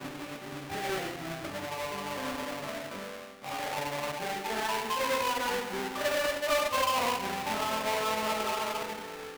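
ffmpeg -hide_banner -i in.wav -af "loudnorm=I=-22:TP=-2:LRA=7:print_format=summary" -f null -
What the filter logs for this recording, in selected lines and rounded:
Input Integrated:    -31.4 LUFS
Input True Peak:     -17.6 dBTP
Input LRA:             6.8 LU
Input Threshold:     -41.5 LUFS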